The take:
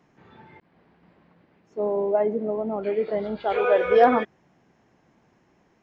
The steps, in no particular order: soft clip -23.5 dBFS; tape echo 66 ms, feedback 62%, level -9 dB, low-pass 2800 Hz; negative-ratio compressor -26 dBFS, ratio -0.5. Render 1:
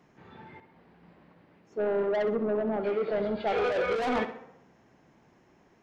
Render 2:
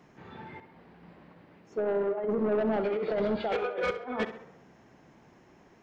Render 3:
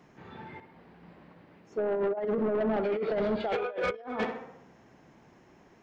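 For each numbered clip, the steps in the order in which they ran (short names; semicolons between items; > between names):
soft clip > tape echo > negative-ratio compressor; negative-ratio compressor > soft clip > tape echo; tape echo > negative-ratio compressor > soft clip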